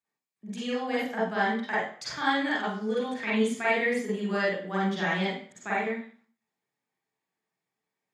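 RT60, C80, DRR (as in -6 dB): 0.50 s, 6.5 dB, -8.0 dB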